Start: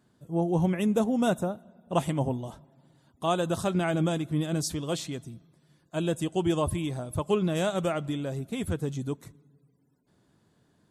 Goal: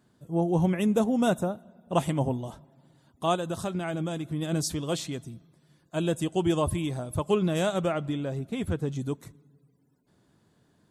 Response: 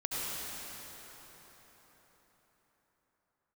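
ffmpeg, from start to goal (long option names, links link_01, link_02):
-filter_complex "[0:a]asplit=3[link_01][link_02][link_03];[link_01]afade=type=out:start_time=3.35:duration=0.02[link_04];[link_02]acompressor=threshold=-31dB:ratio=2.5,afade=type=in:start_time=3.35:duration=0.02,afade=type=out:start_time=4.41:duration=0.02[link_05];[link_03]afade=type=in:start_time=4.41:duration=0.02[link_06];[link_04][link_05][link_06]amix=inputs=3:normalize=0,asettb=1/sr,asplit=3[link_07][link_08][link_09];[link_07]atrim=end=7.784[link_10];[link_08]atrim=start=7.78:end=8.96,asetpts=PTS-STARTPTS,afade=type=in:duration=0.004:curve=qsin,afade=type=out:start_time=1.176:duration=0.004:curve=qsin,lowpass=frequency=4000:poles=1[link_11];[link_09]atrim=start=8.956[link_12];[link_10][link_11]acrossfade=duration=0.004:curve1=hsin:curve2=qsin[link_13];[link_13][link_12]acrossfade=duration=0.004:curve1=qsin:curve2=hsin,volume=1dB"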